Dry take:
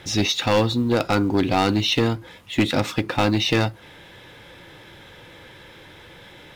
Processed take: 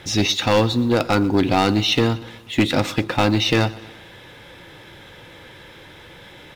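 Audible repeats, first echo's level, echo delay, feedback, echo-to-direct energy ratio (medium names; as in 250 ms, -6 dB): 3, -20.0 dB, 121 ms, 55%, -18.5 dB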